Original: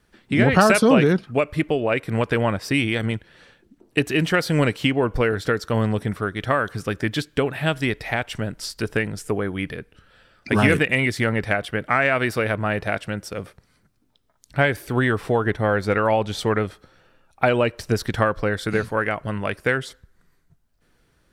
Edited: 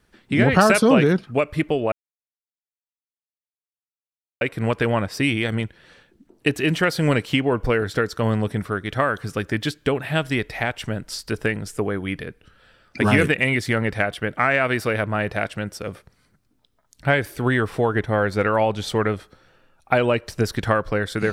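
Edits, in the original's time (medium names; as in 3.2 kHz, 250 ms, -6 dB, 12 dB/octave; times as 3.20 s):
1.92 s: insert silence 2.49 s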